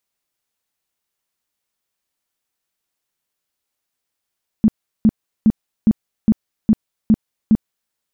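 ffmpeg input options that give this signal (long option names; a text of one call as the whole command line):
ffmpeg -f lavfi -i "aevalsrc='0.422*sin(2*PI*218*mod(t,0.41))*lt(mod(t,0.41),9/218)':duration=3.28:sample_rate=44100" out.wav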